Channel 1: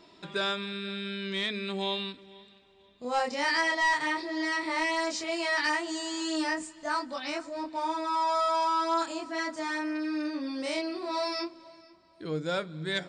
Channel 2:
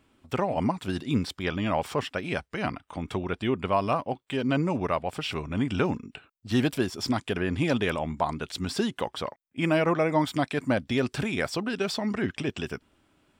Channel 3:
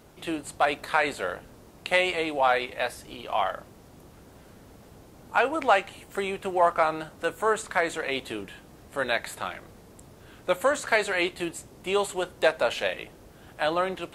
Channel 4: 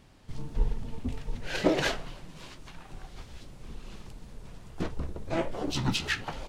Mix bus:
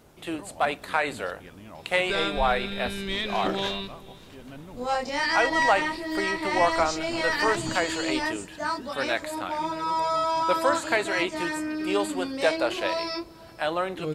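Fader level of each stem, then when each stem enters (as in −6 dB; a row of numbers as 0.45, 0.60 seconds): +1.5, −18.5, −1.5, −7.5 decibels; 1.75, 0.00, 0.00, 1.80 seconds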